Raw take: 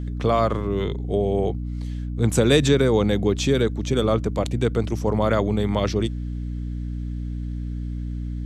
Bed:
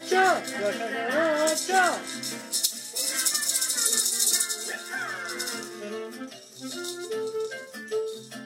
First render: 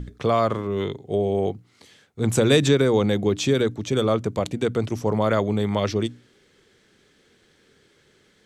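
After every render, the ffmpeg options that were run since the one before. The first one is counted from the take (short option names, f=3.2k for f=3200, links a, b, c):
-af "bandreject=f=60:t=h:w=6,bandreject=f=120:t=h:w=6,bandreject=f=180:t=h:w=6,bandreject=f=240:t=h:w=6,bandreject=f=300:t=h:w=6"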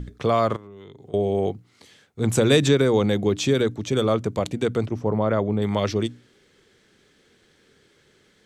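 -filter_complex "[0:a]asettb=1/sr,asplit=3[a][b][c];[a]atrim=end=0.564[d];[b]atrim=start=0.56:end=1.14,asetpts=PTS-STARTPTS,afade=t=in:d=0.004:c=qsin,afade=t=out:st=0.576:d=0.004:c=qsin,acompressor=threshold=-39dB:ratio=10:attack=3.2:release=140:knee=1:detection=peak[e];[c]atrim=start=1.136[f];[d][e]acrossfade=d=0.004:c1=hsin:c2=qsin[g];[g][f]acrossfade=d=0.004:c1=qsin:c2=hsin,asettb=1/sr,asplit=3[h][i][j];[h]atrim=end=4.874[k];[i]atrim=start=4.87:end=5.62,asetpts=PTS-STARTPTS,afade=t=in:d=0.004:c=qsin,afade=t=out:st=0.746:d=0.004:c=qsin,lowpass=f=1.2k:p=1[l];[j]atrim=start=5.616[m];[k][l]acrossfade=d=0.004:c1=hsin:c2=qsin[n];[n][m]acrossfade=d=0.004:c1=qsin:c2=hsin"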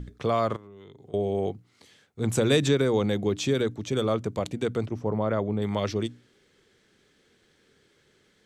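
-af "volume=-4.5dB"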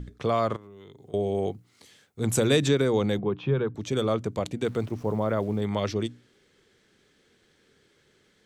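-filter_complex "[0:a]asettb=1/sr,asplit=3[a][b][c];[a]atrim=end=0.614[d];[b]atrim=start=0.61:end=2.47,asetpts=PTS-STARTPTS,afade=t=in:d=0.004:c=qsin,afade=t=out:st=1.856:d=0.004:c=qsin,highshelf=f=7.7k:g=9[e];[c]atrim=start=2.466[f];[d][e]acrossfade=d=0.004:c1=hsin:c2=qsin[g];[g][f]acrossfade=d=0.004:c1=qsin:c2=hsin,asettb=1/sr,asplit=3[h][i][j];[h]atrim=end=3.194[k];[i]atrim=start=3.19:end=3.75,asetpts=PTS-STARTPTS,afade=t=in:d=0.004:c=qsin,afade=t=out:st=0.556:d=0.004:c=qsin,highpass=130,equalizer=f=140:t=q:w=4:g=9,equalizer=f=270:t=q:w=4:g=-8,equalizer=f=610:t=q:w=4:g=-5,equalizer=f=1k:t=q:w=4:g=6,equalizer=f=2k:t=q:w=4:g=-10,lowpass=f=2.5k:w=0.5412,lowpass=f=2.5k:w=1.3066[l];[j]atrim=start=3.746[m];[k][l]acrossfade=d=0.004:c1=hsin:c2=qsin[n];[n][m]acrossfade=d=0.004:c1=qsin:c2=hsin,asettb=1/sr,asplit=3[o][p][q];[o]atrim=end=4.644[r];[p]atrim=start=4.64:end=5.61,asetpts=PTS-STARTPTS,afade=t=in:d=0.004:c=qsin,afade=t=out:st=0.966:d=0.004:c=qsin,aeval=exprs='val(0)*gte(abs(val(0)),0.00398)':c=same[s];[q]atrim=start=5.606[t];[r][s]acrossfade=d=0.004:c1=hsin:c2=qsin[u];[u][t]acrossfade=d=0.004:c1=qsin:c2=hsin"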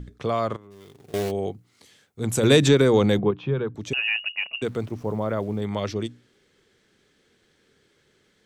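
-filter_complex "[0:a]asplit=3[a][b][c];[a]afade=t=out:st=0.7:d=0.02[d];[b]acrusher=bits=2:mode=log:mix=0:aa=0.000001,afade=t=in:st=0.7:d=0.02,afade=t=out:st=1.3:d=0.02[e];[c]afade=t=in:st=1.3:d=0.02[f];[d][e][f]amix=inputs=3:normalize=0,asettb=1/sr,asplit=3[g][h][i];[g]atrim=end=2.434[j];[h]atrim=start=2.43:end=3.31,asetpts=PTS-STARTPTS,afade=t=in:d=0.004:c=qsin,afade=t=out:st=0.876:d=0.004:c=qsin,acontrast=55[k];[i]atrim=start=3.306[l];[j][k]acrossfade=d=0.004:c1=hsin:c2=qsin[m];[m][l]acrossfade=d=0.004:c1=qsin:c2=hsin,asettb=1/sr,asplit=3[n][o][p];[n]atrim=end=3.934[q];[o]atrim=start=3.93:end=4.62,asetpts=PTS-STARTPTS,afade=t=in:d=0.004:c=qsin,afade=t=out:st=0.686:d=0.004:c=qsin,lowpass=f=2.6k:t=q:w=0.5098,lowpass=f=2.6k:t=q:w=0.6013,lowpass=f=2.6k:t=q:w=0.9,lowpass=f=2.6k:t=q:w=2.563,afreqshift=-3000[r];[p]atrim=start=4.616[s];[q][r]acrossfade=d=0.004:c1=hsin:c2=qsin[t];[t][s]acrossfade=d=0.004:c1=qsin:c2=hsin"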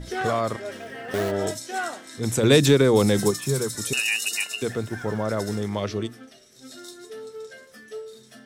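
-filter_complex "[1:a]volume=-7.5dB[a];[0:a][a]amix=inputs=2:normalize=0"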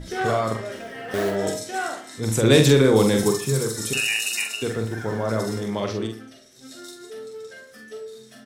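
-filter_complex "[0:a]asplit=2[a][b];[b]adelay=45,volume=-5dB[c];[a][c]amix=inputs=2:normalize=0,asplit=2[d][e];[e]adelay=72,lowpass=f=2k:p=1,volume=-10.5dB,asplit=2[f][g];[g]adelay=72,lowpass=f=2k:p=1,volume=0.39,asplit=2[h][i];[i]adelay=72,lowpass=f=2k:p=1,volume=0.39,asplit=2[j][k];[k]adelay=72,lowpass=f=2k:p=1,volume=0.39[l];[d][f][h][j][l]amix=inputs=5:normalize=0"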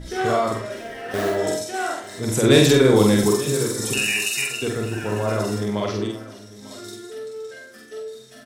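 -filter_complex "[0:a]asplit=2[a][b];[b]adelay=48,volume=-3dB[c];[a][c]amix=inputs=2:normalize=0,aecho=1:1:899:0.119"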